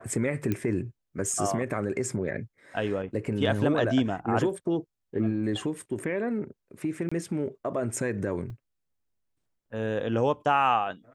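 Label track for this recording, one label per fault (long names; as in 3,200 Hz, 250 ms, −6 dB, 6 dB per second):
0.520000	0.520000	click −15 dBFS
7.090000	7.120000	drop-out 25 ms
8.500000	8.500000	drop-out 2.3 ms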